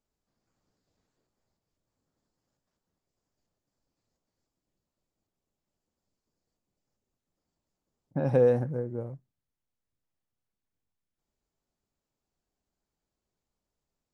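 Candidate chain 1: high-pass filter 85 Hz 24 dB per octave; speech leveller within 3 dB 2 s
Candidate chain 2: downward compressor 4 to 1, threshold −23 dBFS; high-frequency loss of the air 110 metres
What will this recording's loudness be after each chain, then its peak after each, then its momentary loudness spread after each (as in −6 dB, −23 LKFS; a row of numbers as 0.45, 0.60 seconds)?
−28.0, −31.0 LKFS; −14.0, −15.5 dBFS; 15, 14 LU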